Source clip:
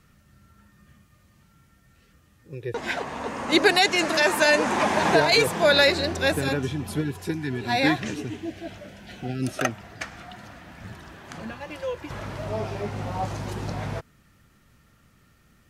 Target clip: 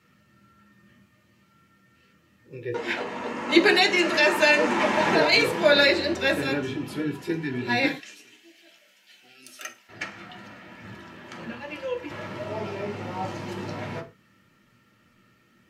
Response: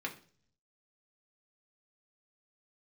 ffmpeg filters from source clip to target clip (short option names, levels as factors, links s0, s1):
-filter_complex "[0:a]asettb=1/sr,asplit=3[s0][s1][s2];[s0]atrim=end=7.864[s3];[s1]atrim=start=7.86:end=9.89,asetpts=PTS-STARTPTS,afade=t=in:d=0.004:c=qsin,afade=t=out:st=2.026:d=0.004:c=qsin,aderivative[s4];[s2]atrim=start=9.886[s5];[s3][s4]acrossfade=d=0.004:c1=hsin:c2=qsin[s6];[s6][s5]acrossfade=d=0.004:c1=qsin:c2=hsin[s7];[1:a]atrim=start_sample=2205,afade=t=out:st=0.22:d=0.01,atrim=end_sample=10143,asetrate=52920,aresample=44100[s8];[s7][s8]afir=irnorm=-1:irlink=0"